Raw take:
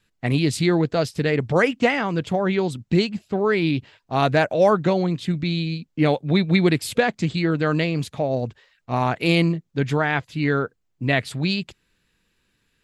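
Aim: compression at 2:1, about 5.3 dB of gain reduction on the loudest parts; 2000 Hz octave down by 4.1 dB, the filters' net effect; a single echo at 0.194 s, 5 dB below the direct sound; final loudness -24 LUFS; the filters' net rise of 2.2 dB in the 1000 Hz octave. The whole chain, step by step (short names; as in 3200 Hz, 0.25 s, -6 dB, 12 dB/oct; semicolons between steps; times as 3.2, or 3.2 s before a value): bell 1000 Hz +4.5 dB; bell 2000 Hz -6.5 dB; compressor 2:1, threshold -22 dBFS; echo 0.194 s -5 dB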